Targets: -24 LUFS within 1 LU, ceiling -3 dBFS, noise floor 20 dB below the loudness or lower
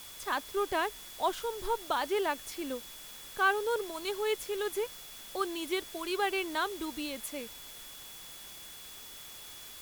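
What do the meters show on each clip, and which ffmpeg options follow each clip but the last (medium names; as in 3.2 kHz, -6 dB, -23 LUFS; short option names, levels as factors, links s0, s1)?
steady tone 3.4 kHz; tone level -52 dBFS; noise floor -48 dBFS; noise floor target -54 dBFS; loudness -33.5 LUFS; peak level -15.5 dBFS; loudness target -24.0 LUFS
-> -af "bandreject=f=3400:w=30"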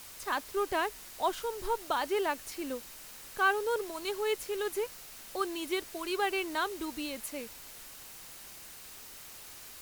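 steady tone not found; noise floor -49 dBFS; noise floor target -54 dBFS
-> -af "afftdn=nr=6:nf=-49"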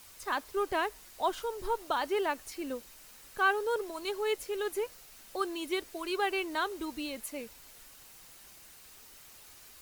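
noise floor -54 dBFS; loudness -33.5 LUFS; peak level -15.5 dBFS; loudness target -24.0 LUFS
-> -af "volume=2.99"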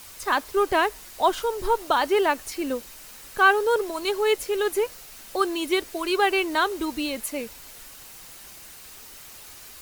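loudness -24.0 LUFS; peak level -6.0 dBFS; noise floor -45 dBFS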